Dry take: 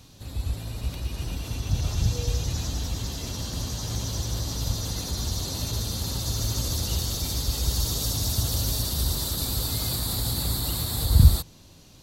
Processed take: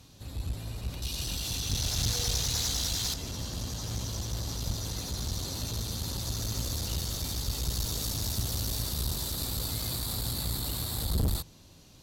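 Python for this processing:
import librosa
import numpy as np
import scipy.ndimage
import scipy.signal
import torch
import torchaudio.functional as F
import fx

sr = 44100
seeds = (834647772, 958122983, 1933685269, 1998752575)

y = fx.high_shelf_res(x, sr, hz=2600.0, db=11.0, q=1.5, at=(1.02, 3.14))
y = fx.clip_asym(y, sr, top_db=-30.0, bottom_db=-16.0)
y = F.gain(torch.from_numpy(y), -3.5).numpy()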